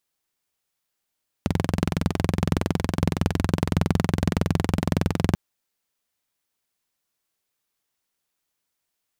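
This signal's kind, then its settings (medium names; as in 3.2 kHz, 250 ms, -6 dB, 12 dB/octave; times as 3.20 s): single-cylinder engine model, steady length 3.89 s, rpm 2600, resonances 93/160 Hz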